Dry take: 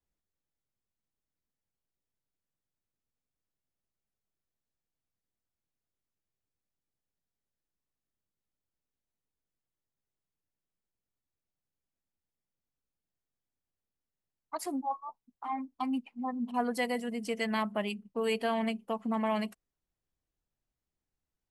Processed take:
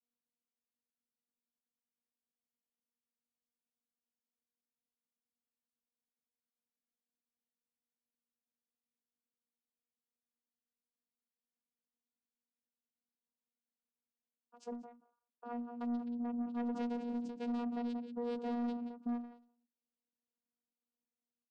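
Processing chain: echo from a far wall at 31 m, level -8 dB; vocoder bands 8, saw 239 Hz; peaking EQ 1.9 kHz -14 dB 0.6 oct; saturation -31.5 dBFS, distortion -14 dB; endings held to a fixed fall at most 110 dB/s; trim -1 dB

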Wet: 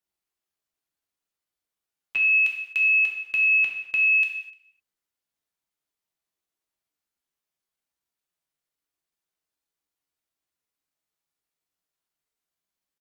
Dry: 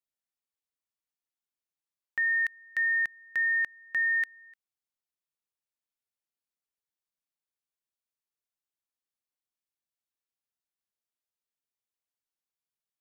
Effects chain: treble shelf 2.3 kHz -3 dB; pitch shift +6 st; gated-style reverb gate 280 ms falling, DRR 0 dB; trim +6 dB

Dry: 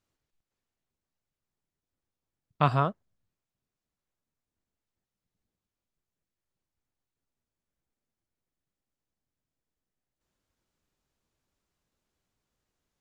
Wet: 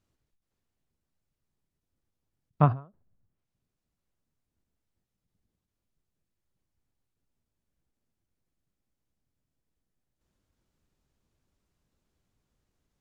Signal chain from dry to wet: bass shelf 340 Hz +8.5 dB; low-pass that closes with the level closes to 1.4 kHz, closed at -41 dBFS; endings held to a fixed fall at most 170 dB/s

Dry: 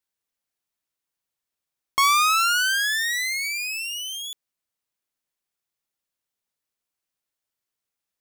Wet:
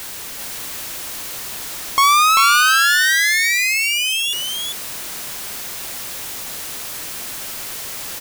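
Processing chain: jump at every zero crossing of -30 dBFS; delay 392 ms -3.5 dB; waveshaping leveller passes 1; trim +2.5 dB

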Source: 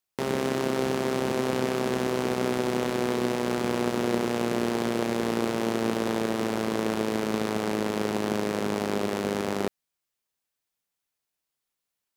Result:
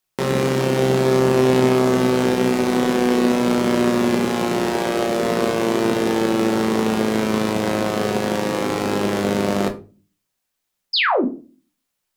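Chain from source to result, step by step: painted sound fall, 10.93–11.25 s, 210–5400 Hz -25 dBFS; simulated room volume 180 m³, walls furnished, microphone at 1 m; trim +6 dB

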